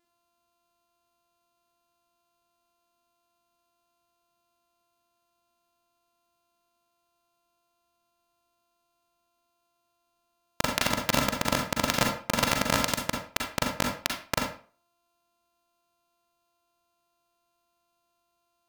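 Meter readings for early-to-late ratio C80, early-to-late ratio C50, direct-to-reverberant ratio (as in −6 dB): 9.5 dB, 4.0 dB, 1.0 dB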